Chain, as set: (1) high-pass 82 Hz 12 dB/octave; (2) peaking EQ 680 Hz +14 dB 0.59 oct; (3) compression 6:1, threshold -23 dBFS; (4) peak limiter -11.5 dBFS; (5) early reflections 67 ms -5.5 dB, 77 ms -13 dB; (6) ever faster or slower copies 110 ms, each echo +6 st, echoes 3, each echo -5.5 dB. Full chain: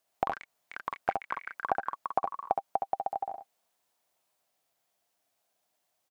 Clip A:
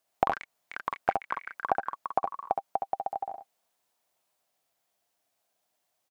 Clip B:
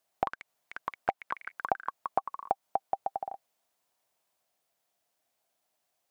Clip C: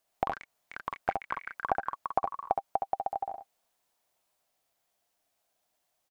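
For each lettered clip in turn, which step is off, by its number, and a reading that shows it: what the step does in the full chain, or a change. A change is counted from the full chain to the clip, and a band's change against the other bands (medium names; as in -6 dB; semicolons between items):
4, crest factor change +3.0 dB; 5, loudness change -1.0 LU; 1, 125 Hz band +3.0 dB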